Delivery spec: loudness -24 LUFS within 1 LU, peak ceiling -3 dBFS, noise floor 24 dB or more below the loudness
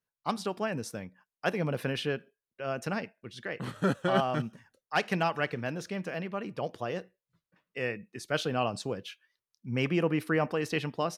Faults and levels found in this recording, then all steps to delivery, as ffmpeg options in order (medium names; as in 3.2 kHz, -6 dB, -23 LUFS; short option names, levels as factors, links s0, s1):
loudness -32.5 LUFS; peak level -12.5 dBFS; loudness target -24.0 LUFS
-> -af "volume=2.66"